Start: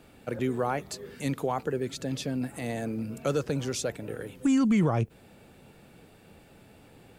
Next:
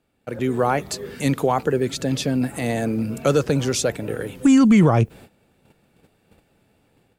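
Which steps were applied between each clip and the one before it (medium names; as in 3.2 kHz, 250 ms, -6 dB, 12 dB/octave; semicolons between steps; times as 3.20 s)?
gate -50 dBFS, range -17 dB; level rider gain up to 8 dB; trim +1.5 dB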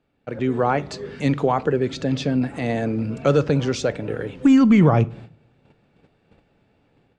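Gaussian low-pass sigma 1.6 samples; reverberation RT60 0.50 s, pre-delay 7 ms, DRR 16.5 dB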